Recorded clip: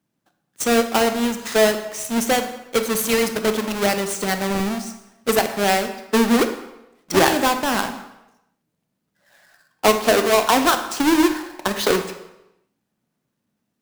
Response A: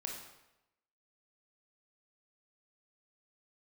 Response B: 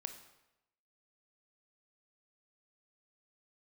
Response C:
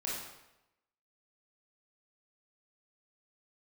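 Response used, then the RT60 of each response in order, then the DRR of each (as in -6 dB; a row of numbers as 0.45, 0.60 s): B; 0.95, 0.90, 0.95 s; 0.0, 7.0, -6.0 dB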